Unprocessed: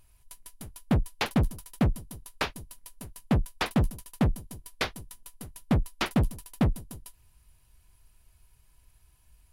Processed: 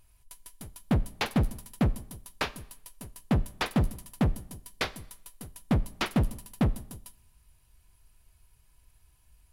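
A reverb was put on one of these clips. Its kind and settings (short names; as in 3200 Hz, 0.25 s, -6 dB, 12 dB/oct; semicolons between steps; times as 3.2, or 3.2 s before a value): Schroeder reverb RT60 0.77 s, combs from 29 ms, DRR 18 dB; gain -1 dB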